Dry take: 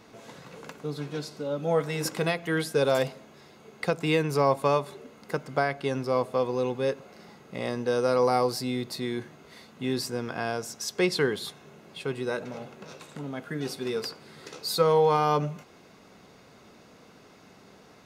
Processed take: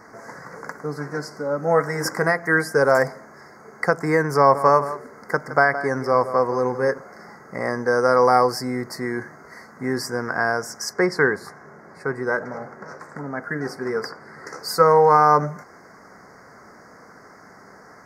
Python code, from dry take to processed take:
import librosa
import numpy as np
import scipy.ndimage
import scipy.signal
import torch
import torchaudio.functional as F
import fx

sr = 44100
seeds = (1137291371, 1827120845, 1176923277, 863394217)

y = fx.echo_single(x, sr, ms=167, db=-13.0, at=(4.38, 6.98))
y = fx.high_shelf(y, sr, hz=4900.0, db=-9.0, at=(10.93, 14.47))
y = scipy.signal.sosfilt(scipy.signal.ellip(3, 1.0, 80, [1900.0, 5000.0], 'bandstop', fs=sr, output='sos'), y)
y = fx.peak_eq(y, sr, hz=1600.0, db=11.5, octaves=2.4)
y = y * librosa.db_to_amplitude(2.5)